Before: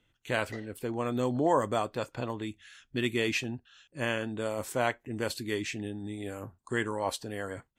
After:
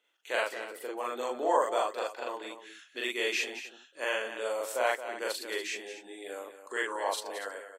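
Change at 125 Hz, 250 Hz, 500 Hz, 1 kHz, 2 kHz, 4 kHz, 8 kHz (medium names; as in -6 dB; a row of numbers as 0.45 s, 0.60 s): under -35 dB, -11.0 dB, -0.5 dB, +1.5 dB, +1.5 dB, +1.5 dB, +1.5 dB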